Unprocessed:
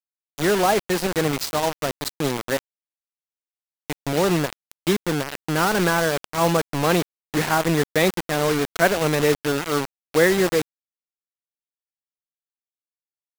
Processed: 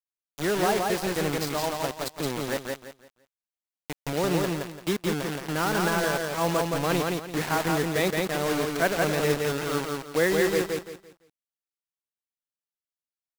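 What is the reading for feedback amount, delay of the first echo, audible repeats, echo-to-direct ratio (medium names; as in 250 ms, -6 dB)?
29%, 170 ms, 3, -2.5 dB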